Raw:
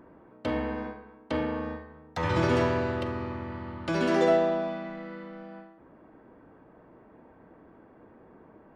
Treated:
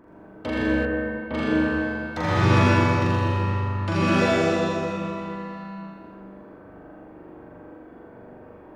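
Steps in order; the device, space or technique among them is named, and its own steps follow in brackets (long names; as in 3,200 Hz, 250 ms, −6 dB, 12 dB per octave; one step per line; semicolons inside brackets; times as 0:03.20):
tunnel (flutter between parallel walls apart 7.1 metres, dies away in 1.1 s; convolution reverb RT60 2.3 s, pre-delay 66 ms, DRR −3.5 dB)
0:00.85–0:01.34: high-frequency loss of the air 400 metres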